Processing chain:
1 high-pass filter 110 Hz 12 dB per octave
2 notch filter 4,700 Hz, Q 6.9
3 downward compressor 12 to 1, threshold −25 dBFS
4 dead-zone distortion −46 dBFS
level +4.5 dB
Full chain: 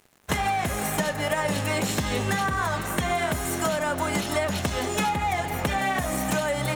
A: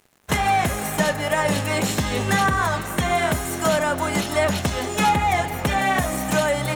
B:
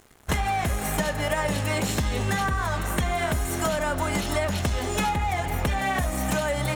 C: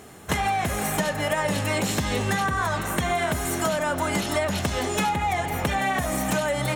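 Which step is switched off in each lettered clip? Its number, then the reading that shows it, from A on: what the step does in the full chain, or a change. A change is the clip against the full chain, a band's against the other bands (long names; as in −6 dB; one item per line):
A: 3, average gain reduction 3.0 dB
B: 1, 125 Hz band +4.0 dB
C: 4, distortion level −21 dB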